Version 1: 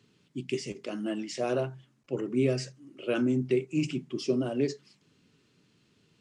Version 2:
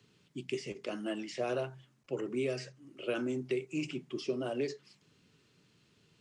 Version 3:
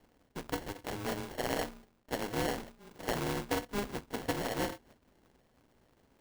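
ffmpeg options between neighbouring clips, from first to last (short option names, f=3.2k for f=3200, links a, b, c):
-filter_complex "[0:a]equalizer=f=260:t=o:w=0.86:g=-4.5,acrossover=split=270|1800|3600[a][b][c][d];[a]acompressor=threshold=-46dB:ratio=4[e];[b]acompressor=threshold=-31dB:ratio=4[f];[c]acompressor=threshold=-45dB:ratio=4[g];[d]acompressor=threshold=-52dB:ratio=4[h];[e][f][g][h]amix=inputs=4:normalize=0"
-af "acrusher=samples=36:mix=1:aa=0.000001,aeval=exprs='val(0)*sgn(sin(2*PI*100*n/s))':c=same"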